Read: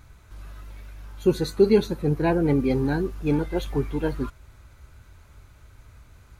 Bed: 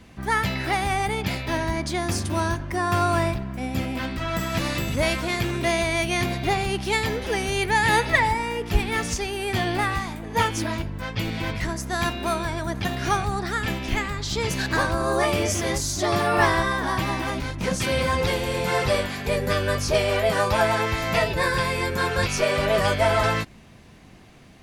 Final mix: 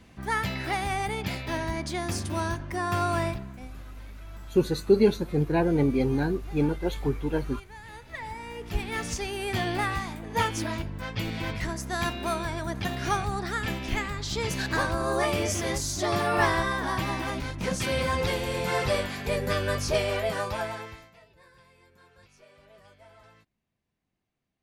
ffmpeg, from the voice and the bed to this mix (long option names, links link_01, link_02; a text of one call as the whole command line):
ffmpeg -i stem1.wav -i stem2.wav -filter_complex "[0:a]adelay=3300,volume=-2dB[link_01];[1:a]volume=17dB,afade=type=out:start_time=3.28:duration=0.48:silence=0.0891251,afade=type=in:start_time=8.04:duration=1.27:silence=0.0794328,afade=type=out:start_time=19.92:duration=1.19:silence=0.0316228[link_02];[link_01][link_02]amix=inputs=2:normalize=0" out.wav